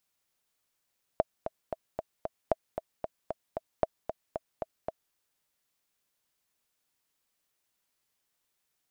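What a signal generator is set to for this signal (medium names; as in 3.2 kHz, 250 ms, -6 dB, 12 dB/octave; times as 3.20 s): metronome 228 bpm, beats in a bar 5, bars 3, 645 Hz, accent 9 dB -10.5 dBFS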